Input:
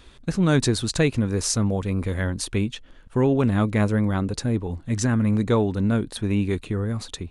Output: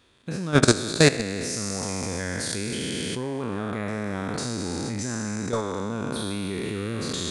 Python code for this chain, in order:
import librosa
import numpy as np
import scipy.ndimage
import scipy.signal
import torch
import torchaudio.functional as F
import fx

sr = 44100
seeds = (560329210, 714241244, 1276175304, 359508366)

y = fx.spec_trails(x, sr, decay_s=2.91)
y = scipy.signal.sosfilt(scipy.signal.butter(2, 110.0, 'highpass', fs=sr, output='sos'), y)
y = fx.level_steps(y, sr, step_db=16)
y = y * librosa.db_to_amplitude(2.5)